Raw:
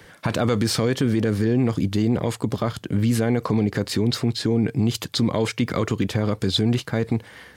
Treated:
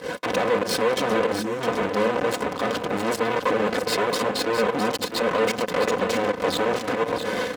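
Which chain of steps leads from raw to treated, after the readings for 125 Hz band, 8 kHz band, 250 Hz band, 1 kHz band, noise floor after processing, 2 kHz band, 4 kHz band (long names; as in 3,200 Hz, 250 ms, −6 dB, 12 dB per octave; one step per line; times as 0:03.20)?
−15.5 dB, 0.0 dB, −7.0 dB, +8.5 dB, −33 dBFS, +6.5 dB, −1.0 dB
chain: lower of the sound and its delayed copy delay 1.9 ms
leveller curve on the samples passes 5
downward compressor 1.5 to 1, threshold −23 dBFS, peak gain reduction 3.5 dB
tilt shelving filter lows +9 dB, about 700 Hz
hard clipping −24.5 dBFS, distortion −6 dB
fake sidechain pumping 95 BPM, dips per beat 1, −18 dB, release 75 ms
high-shelf EQ 7,800 Hz −8 dB
time-frequency box erased 0:01.40–0:01.61, 400–5,200 Hz
high-pass filter 270 Hz 12 dB per octave
comb filter 4 ms, depth 58%
on a send: single-tap delay 659 ms −8 dB
on the sum: level +5.5 dB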